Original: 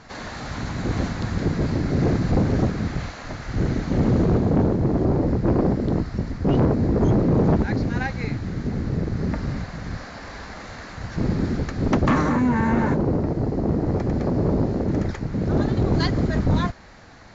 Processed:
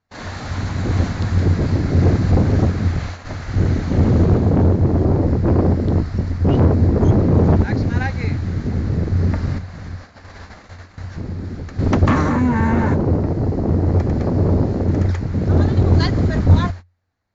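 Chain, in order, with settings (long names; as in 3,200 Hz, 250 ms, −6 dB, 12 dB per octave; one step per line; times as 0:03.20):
noise gate −35 dBFS, range −34 dB
parametric band 89 Hz +14.5 dB 0.24 octaves
0:09.58–0:11.79: downward compressor 2 to 1, threshold −35 dBFS, peak gain reduction 11 dB
level +2.5 dB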